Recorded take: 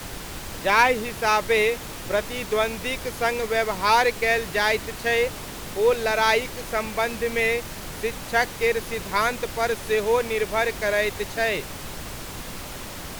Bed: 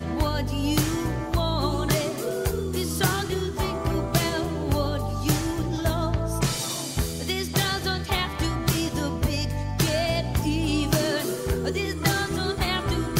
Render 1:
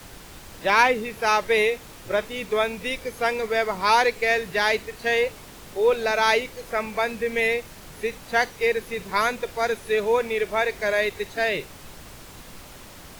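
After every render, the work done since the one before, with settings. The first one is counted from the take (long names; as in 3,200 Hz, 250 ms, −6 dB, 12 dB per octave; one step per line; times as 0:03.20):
noise reduction from a noise print 8 dB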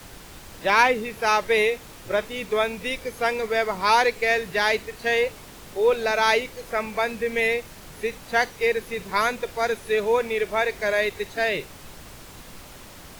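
no processing that can be heard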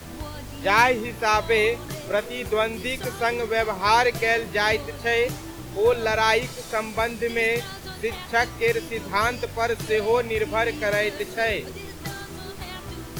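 mix in bed −11 dB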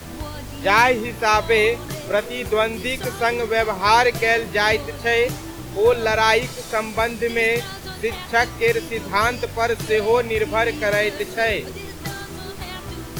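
level +3.5 dB
brickwall limiter −3 dBFS, peak gain reduction 1.5 dB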